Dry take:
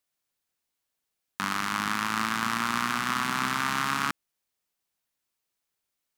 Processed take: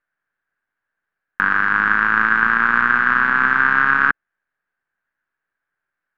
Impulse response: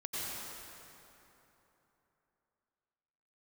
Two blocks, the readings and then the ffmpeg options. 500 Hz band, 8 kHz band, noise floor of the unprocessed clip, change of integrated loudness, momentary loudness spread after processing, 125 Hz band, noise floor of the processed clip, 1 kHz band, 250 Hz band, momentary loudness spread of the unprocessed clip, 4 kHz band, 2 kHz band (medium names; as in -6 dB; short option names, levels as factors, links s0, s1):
+7.5 dB, under -20 dB, -83 dBFS, +12.5 dB, 5 LU, +3.0 dB, -83 dBFS, +10.0 dB, +3.5 dB, 5 LU, -6.0 dB, +17.0 dB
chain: -af "aeval=exprs='if(lt(val(0),0),0.447*val(0),val(0))':c=same,lowpass=f=1600:t=q:w=8.1,volume=1.68"